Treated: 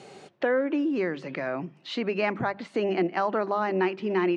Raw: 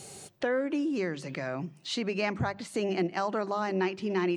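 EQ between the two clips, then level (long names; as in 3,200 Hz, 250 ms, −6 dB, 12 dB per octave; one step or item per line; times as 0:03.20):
band-pass filter 210–2,800 Hz
+4.5 dB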